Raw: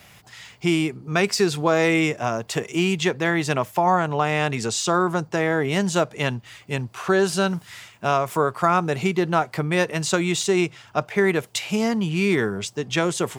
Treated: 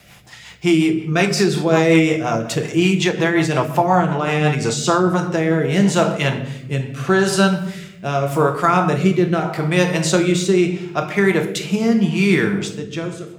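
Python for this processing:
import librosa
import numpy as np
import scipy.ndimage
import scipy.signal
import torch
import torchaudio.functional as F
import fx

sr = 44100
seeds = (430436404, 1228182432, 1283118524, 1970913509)

y = fx.fade_out_tail(x, sr, length_s=0.96)
y = fx.room_shoebox(y, sr, seeds[0], volume_m3=320.0, walls='mixed', distance_m=0.78)
y = fx.rotary_switch(y, sr, hz=5.5, then_hz=0.8, switch_at_s=4.57)
y = y * 10.0 ** (4.5 / 20.0)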